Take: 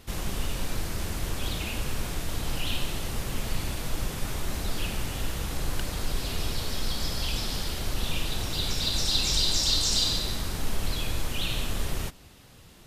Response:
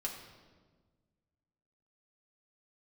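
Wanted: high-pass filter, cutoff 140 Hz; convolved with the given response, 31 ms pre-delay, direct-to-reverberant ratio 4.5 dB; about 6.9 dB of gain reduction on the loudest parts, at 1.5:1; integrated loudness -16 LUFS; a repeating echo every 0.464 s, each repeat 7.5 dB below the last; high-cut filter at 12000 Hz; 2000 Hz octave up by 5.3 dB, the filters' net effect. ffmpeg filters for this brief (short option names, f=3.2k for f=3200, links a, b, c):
-filter_complex "[0:a]highpass=140,lowpass=12k,equalizer=f=2k:t=o:g=7,acompressor=threshold=-40dB:ratio=1.5,aecho=1:1:464|928|1392|1856|2320:0.422|0.177|0.0744|0.0312|0.0131,asplit=2[a][b];[1:a]atrim=start_sample=2205,adelay=31[c];[b][c]afir=irnorm=-1:irlink=0,volume=-5dB[d];[a][d]amix=inputs=2:normalize=0,volume=16dB"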